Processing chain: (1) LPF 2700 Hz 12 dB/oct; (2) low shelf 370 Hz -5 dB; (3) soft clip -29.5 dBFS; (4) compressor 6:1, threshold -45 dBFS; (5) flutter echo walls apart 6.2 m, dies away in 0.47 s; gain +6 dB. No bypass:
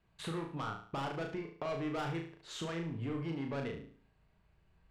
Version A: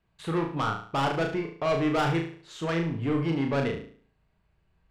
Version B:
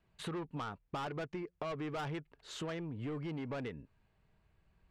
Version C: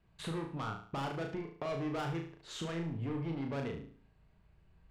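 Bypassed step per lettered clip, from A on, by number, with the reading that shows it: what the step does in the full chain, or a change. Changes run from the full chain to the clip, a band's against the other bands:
4, mean gain reduction 9.5 dB; 5, echo-to-direct -3.0 dB to none; 2, 125 Hz band +2.0 dB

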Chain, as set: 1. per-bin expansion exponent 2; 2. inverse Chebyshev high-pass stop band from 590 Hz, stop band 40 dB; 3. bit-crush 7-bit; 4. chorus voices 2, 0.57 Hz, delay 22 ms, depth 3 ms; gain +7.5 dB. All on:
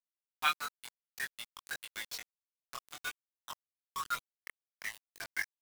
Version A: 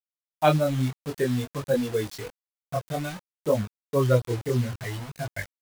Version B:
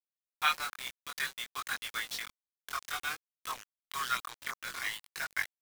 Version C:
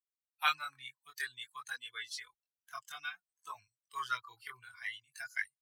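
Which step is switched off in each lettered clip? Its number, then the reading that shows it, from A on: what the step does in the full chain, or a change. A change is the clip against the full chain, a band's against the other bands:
2, 125 Hz band +35.0 dB; 1, crest factor change -3.0 dB; 3, momentary loudness spread change -3 LU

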